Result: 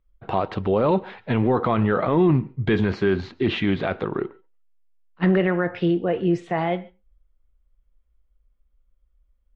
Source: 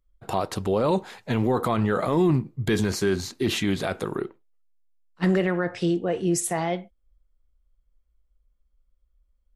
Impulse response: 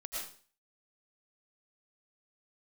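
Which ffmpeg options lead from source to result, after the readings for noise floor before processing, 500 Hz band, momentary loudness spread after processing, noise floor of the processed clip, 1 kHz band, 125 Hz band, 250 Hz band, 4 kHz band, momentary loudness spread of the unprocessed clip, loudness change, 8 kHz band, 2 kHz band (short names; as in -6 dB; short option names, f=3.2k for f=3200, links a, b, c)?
-69 dBFS, +3.0 dB, 7 LU, -66 dBFS, +3.0 dB, +3.0 dB, +3.0 dB, -2.0 dB, 7 LU, +2.5 dB, under -25 dB, +2.5 dB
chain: -filter_complex "[0:a]lowpass=f=3.2k:w=0.5412,lowpass=f=3.2k:w=1.3066,asplit=2[a][b];[1:a]atrim=start_sample=2205,afade=t=out:st=0.15:d=0.01,atrim=end_sample=7056,asetrate=31311,aresample=44100[c];[b][c]afir=irnorm=-1:irlink=0,volume=-16.5dB[d];[a][d]amix=inputs=2:normalize=0,volume=2dB"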